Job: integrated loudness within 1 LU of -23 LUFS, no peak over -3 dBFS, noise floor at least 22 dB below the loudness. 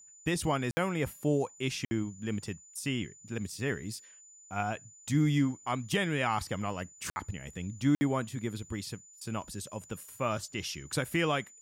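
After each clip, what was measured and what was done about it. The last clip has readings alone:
dropouts 4; longest dropout 60 ms; steady tone 7000 Hz; tone level -53 dBFS; loudness -33.5 LUFS; peak -16.5 dBFS; loudness target -23.0 LUFS
-> interpolate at 0.71/1.85/7.1/7.95, 60 ms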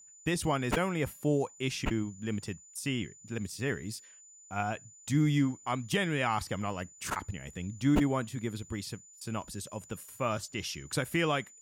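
dropouts 0; steady tone 7000 Hz; tone level -53 dBFS
-> notch 7000 Hz, Q 30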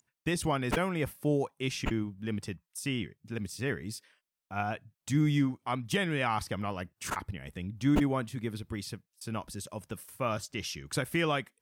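steady tone none; loudness -33.0 LUFS; peak -15.5 dBFS; loudness target -23.0 LUFS
-> gain +10 dB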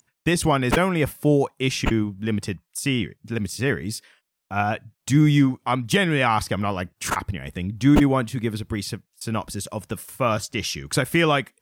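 loudness -23.0 LUFS; peak -5.5 dBFS; noise floor -78 dBFS

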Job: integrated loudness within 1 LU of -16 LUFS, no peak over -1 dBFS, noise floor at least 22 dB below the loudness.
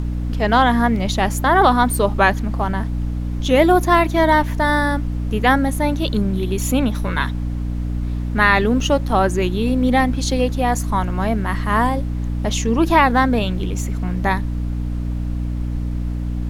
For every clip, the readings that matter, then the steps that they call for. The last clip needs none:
hum 60 Hz; harmonics up to 300 Hz; hum level -20 dBFS; noise floor -24 dBFS; noise floor target -41 dBFS; loudness -18.5 LUFS; peak -1.0 dBFS; loudness target -16.0 LUFS
-> de-hum 60 Hz, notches 5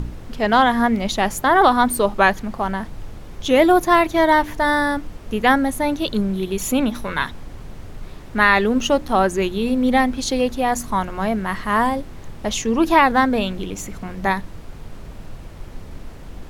hum none; noise floor -37 dBFS; noise floor target -41 dBFS
-> noise print and reduce 6 dB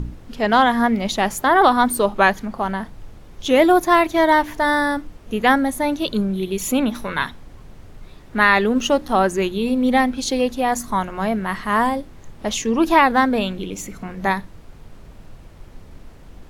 noise floor -43 dBFS; loudness -19.0 LUFS; peak -2.0 dBFS; loudness target -16.0 LUFS
-> gain +3 dB; limiter -1 dBFS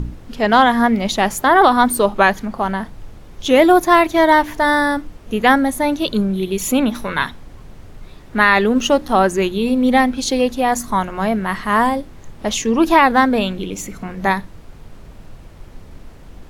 loudness -16.0 LUFS; peak -1.0 dBFS; noise floor -40 dBFS

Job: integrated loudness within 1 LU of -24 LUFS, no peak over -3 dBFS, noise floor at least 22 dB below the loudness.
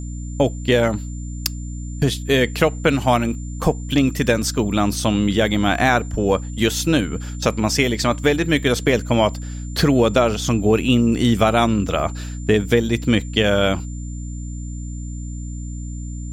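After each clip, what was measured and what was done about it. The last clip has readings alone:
hum 60 Hz; harmonics up to 300 Hz; hum level -27 dBFS; steady tone 7200 Hz; tone level -42 dBFS; loudness -19.0 LUFS; peak -2.5 dBFS; loudness target -24.0 LUFS
-> de-hum 60 Hz, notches 5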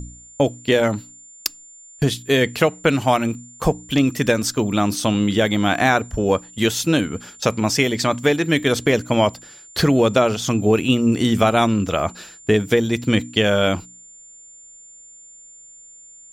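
hum none; steady tone 7200 Hz; tone level -42 dBFS
-> notch 7200 Hz, Q 30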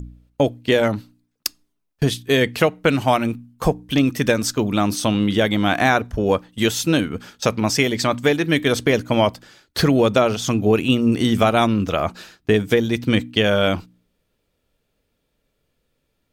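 steady tone none; loudness -19.5 LUFS; peak -2.5 dBFS; loudness target -24.0 LUFS
-> gain -4.5 dB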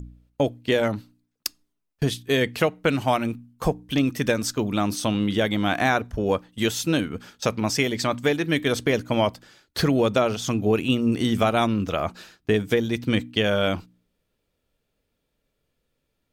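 loudness -24.0 LUFS; peak -7.0 dBFS; noise floor -77 dBFS

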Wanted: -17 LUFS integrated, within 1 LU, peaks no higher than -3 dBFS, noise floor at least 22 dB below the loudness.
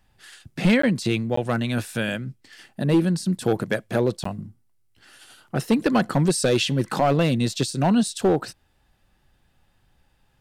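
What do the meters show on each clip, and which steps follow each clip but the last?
clipped 0.7%; flat tops at -12.5 dBFS; dropouts 3; longest dropout 14 ms; loudness -23.0 LUFS; peak -12.5 dBFS; loudness target -17.0 LUFS
-> clip repair -12.5 dBFS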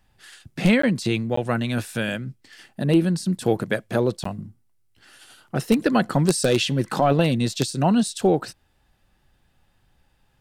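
clipped 0.0%; dropouts 3; longest dropout 14 ms
-> interpolate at 0.82/1.36/4.24, 14 ms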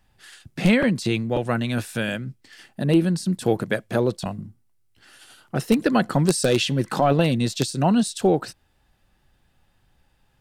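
dropouts 0; loudness -22.5 LUFS; peak -3.5 dBFS; loudness target -17.0 LUFS
-> gain +5.5 dB; limiter -3 dBFS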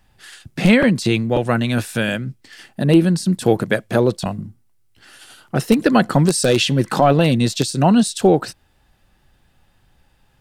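loudness -17.0 LUFS; peak -3.0 dBFS; noise floor -59 dBFS

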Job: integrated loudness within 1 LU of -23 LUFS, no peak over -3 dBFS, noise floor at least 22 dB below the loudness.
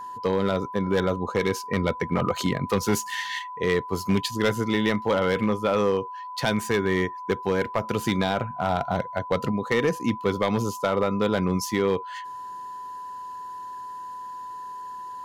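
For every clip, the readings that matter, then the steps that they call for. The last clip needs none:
clipped 0.9%; flat tops at -15.0 dBFS; steady tone 1000 Hz; tone level -34 dBFS; loudness -25.5 LUFS; peak -15.0 dBFS; loudness target -23.0 LUFS
-> clip repair -15 dBFS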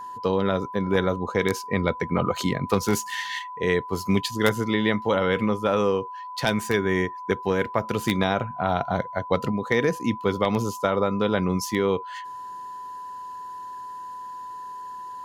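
clipped 0.0%; steady tone 1000 Hz; tone level -34 dBFS
-> notch 1000 Hz, Q 30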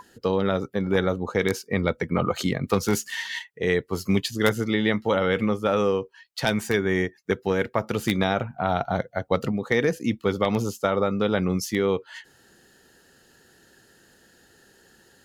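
steady tone none; loudness -25.0 LUFS; peak -6.0 dBFS; loudness target -23.0 LUFS
-> gain +2 dB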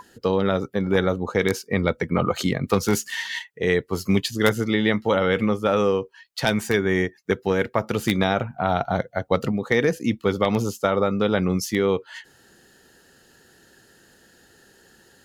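loudness -23.0 LUFS; peak -4.0 dBFS; noise floor -57 dBFS

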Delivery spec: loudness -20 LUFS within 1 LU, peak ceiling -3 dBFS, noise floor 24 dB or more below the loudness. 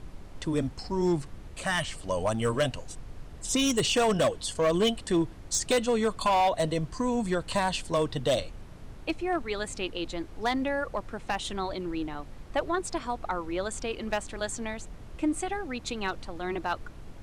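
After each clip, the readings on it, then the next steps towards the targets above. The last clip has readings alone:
clipped 1.3%; flat tops at -19.5 dBFS; noise floor -45 dBFS; noise floor target -54 dBFS; loudness -29.5 LUFS; peak -19.5 dBFS; loudness target -20.0 LUFS
-> clip repair -19.5 dBFS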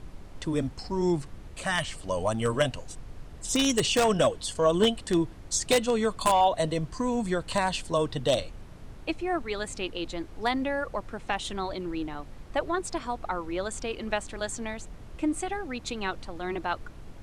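clipped 0.0%; noise floor -45 dBFS; noise floor target -53 dBFS
-> noise print and reduce 8 dB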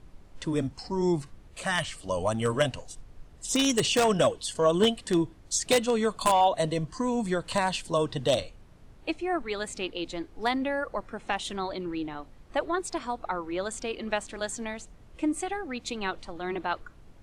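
noise floor -52 dBFS; noise floor target -53 dBFS
-> noise print and reduce 6 dB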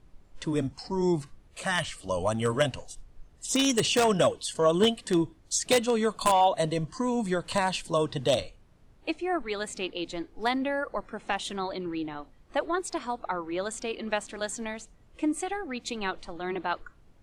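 noise floor -58 dBFS; loudness -29.0 LUFS; peak -10.5 dBFS; loudness target -20.0 LUFS
-> gain +9 dB; limiter -3 dBFS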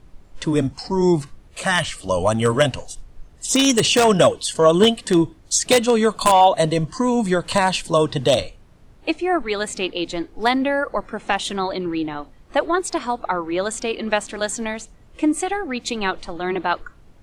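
loudness -20.0 LUFS; peak -3.0 dBFS; noise floor -49 dBFS

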